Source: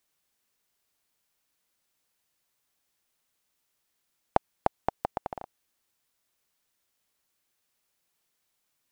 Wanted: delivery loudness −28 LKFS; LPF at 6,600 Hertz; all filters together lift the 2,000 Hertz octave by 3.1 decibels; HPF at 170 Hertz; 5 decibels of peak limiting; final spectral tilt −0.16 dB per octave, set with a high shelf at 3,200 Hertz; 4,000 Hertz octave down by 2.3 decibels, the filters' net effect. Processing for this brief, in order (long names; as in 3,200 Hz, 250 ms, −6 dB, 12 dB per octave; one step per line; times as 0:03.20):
high-pass filter 170 Hz
low-pass filter 6,600 Hz
parametric band 2,000 Hz +4.5 dB
high-shelf EQ 3,200 Hz +3.5 dB
parametric band 4,000 Hz −7.5 dB
level +8.5 dB
brickwall limiter −1 dBFS